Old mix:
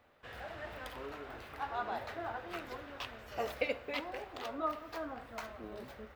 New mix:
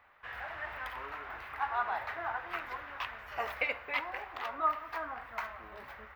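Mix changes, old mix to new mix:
speech −3.5 dB
master: add octave-band graphic EQ 125/250/500/1,000/2,000/4,000/8,000 Hz −5/−8/−6/+8/+8/−3/−8 dB

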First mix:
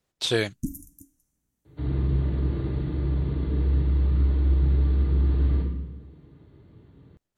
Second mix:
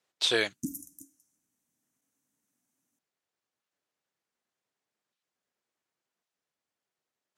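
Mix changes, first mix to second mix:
first sound +5.0 dB
second sound: muted
reverb: off
master: add meter weighting curve A

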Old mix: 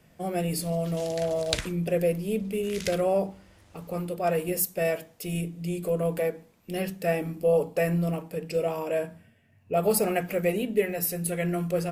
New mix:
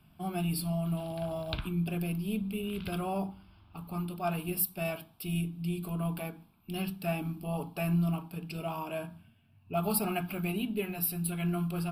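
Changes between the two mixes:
background: add high-frequency loss of the air 350 metres
master: add phaser with its sweep stopped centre 1,900 Hz, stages 6

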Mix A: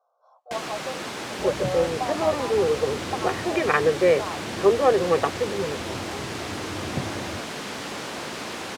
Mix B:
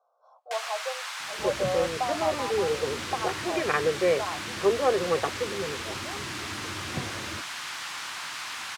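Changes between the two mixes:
first sound: add high-pass filter 990 Hz 24 dB per octave
second sound −5.0 dB

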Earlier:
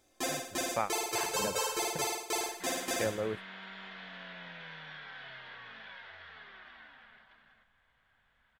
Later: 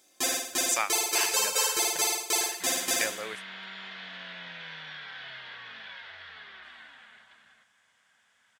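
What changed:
speech: add meter weighting curve ITU-R 468
master: add high-shelf EQ 2,100 Hz +10.5 dB

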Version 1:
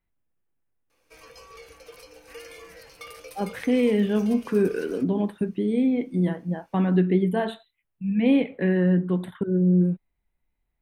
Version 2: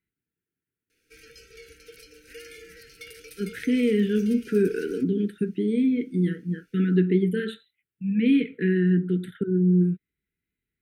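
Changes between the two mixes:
speech: add high-pass filter 98 Hz
master: add linear-phase brick-wall band-stop 490–1,300 Hz

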